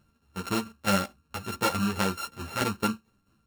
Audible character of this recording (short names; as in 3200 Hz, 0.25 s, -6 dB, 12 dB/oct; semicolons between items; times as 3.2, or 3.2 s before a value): a buzz of ramps at a fixed pitch in blocks of 32 samples; tremolo saw down 4.6 Hz, depth 65%; a shimmering, thickened sound